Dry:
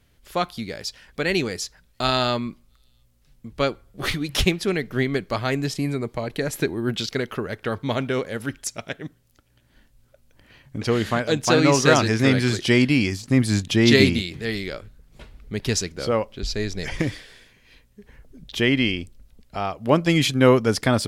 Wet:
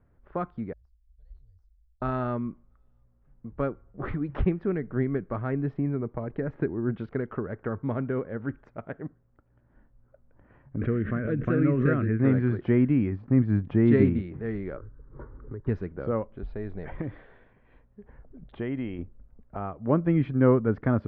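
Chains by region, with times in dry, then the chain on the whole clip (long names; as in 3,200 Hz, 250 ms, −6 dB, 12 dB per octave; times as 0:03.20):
0:00.73–0:02.02: inverse Chebyshev band-stop filter 160–2,600 Hz, stop band 50 dB + de-essing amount 95%
0:10.76–0:12.20: phaser with its sweep stopped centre 2,100 Hz, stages 4 + background raised ahead of every attack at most 57 dB per second
0:14.77–0:15.67: parametric band 160 Hz +9 dB 1.3 octaves + phaser with its sweep stopped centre 700 Hz, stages 6 + multiband upward and downward compressor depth 100%
0:16.35–0:18.99: downward compressor 1.5 to 1, threshold −37 dBFS + low-pass with resonance 3,800 Hz, resonance Q 2.8 + parametric band 700 Hz +3.5 dB 0.73 octaves
whole clip: low-pass filter 1,400 Hz 24 dB per octave; dynamic equaliser 790 Hz, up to −8 dB, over −36 dBFS, Q 0.92; level −2 dB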